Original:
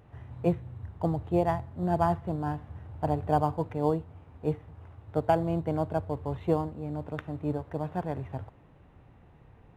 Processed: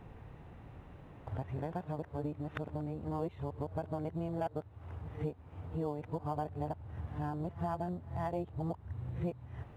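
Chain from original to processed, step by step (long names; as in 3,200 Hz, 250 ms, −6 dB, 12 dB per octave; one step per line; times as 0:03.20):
played backwards from end to start
downward compressor 4 to 1, threshold −40 dBFS, peak gain reduction 18 dB
level +4 dB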